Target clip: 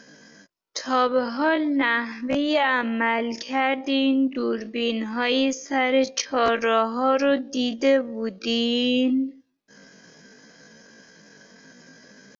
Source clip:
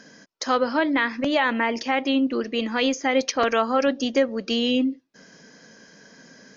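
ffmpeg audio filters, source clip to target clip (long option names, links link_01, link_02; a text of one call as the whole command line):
ffmpeg -i in.wav -af "atempo=0.53" out.wav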